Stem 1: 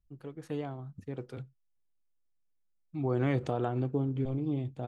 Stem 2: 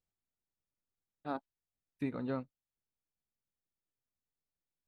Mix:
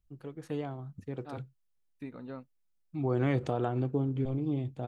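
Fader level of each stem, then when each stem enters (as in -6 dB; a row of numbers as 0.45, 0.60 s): +0.5, -6.0 dB; 0.00, 0.00 s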